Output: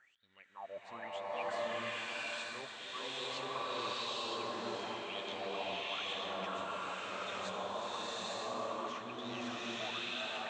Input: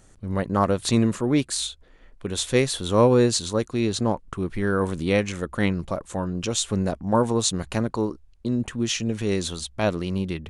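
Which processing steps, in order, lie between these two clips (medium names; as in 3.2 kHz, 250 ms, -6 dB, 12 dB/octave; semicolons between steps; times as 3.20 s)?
wah-wah 1 Hz 600–3700 Hz, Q 18; reverse; compression 6:1, threshold -57 dBFS, peak gain reduction 25 dB; reverse; elliptic low-pass 8.1 kHz, stop band 40 dB; echo whose repeats swap between lows and highs 715 ms, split 1.6 kHz, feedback 76%, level -10 dB; swelling reverb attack 890 ms, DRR -10.5 dB; trim +11 dB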